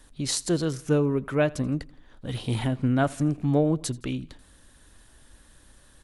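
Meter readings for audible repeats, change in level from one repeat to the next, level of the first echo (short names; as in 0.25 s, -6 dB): 2, -6.0 dB, -23.0 dB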